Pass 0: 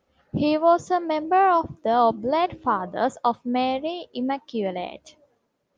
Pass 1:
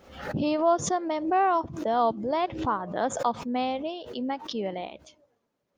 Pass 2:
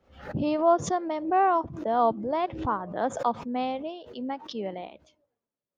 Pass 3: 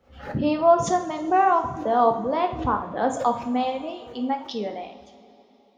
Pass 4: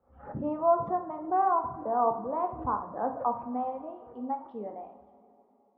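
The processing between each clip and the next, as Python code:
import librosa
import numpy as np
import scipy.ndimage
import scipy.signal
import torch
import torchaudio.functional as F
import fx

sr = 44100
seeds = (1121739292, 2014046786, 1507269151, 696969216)

y1 = fx.pre_swell(x, sr, db_per_s=85.0)
y1 = y1 * librosa.db_to_amplitude(-5.0)
y2 = fx.high_shelf(y1, sr, hz=3900.0, db=-11.0)
y2 = fx.band_widen(y2, sr, depth_pct=40)
y3 = fx.dereverb_blind(y2, sr, rt60_s=0.75)
y3 = fx.rev_double_slope(y3, sr, seeds[0], early_s=0.51, late_s=3.7, knee_db=-18, drr_db=3.5)
y3 = y3 * librosa.db_to_amplitude(3.5)
y4 = fx.ladder_lowpass(y3, sr, hz=1300.0, resonance_pct=40)
y4 = y4 * librosa.db_to_amplitude(-2.0)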